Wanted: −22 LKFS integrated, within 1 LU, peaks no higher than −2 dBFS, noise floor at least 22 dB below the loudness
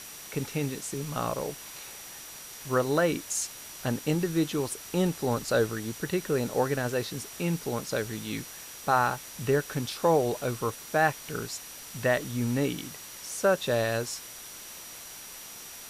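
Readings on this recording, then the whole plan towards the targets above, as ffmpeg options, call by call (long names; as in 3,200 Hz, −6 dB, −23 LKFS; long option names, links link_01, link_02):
interfering tone 5,800 Hz; level of the tone −49 dBFS; background noise floor −44 dBFS; target noise floor −52 dBFS; integrated loudness −29.5 LKFS; sample peak −10.0 dBFS; target loudness −22.0 LKFS
→ -af "bandreject=frequency=5800:width=30"
-af "afftdn=noise_reduction=8:noise_floor=-44"
-af "volume=7.5dB"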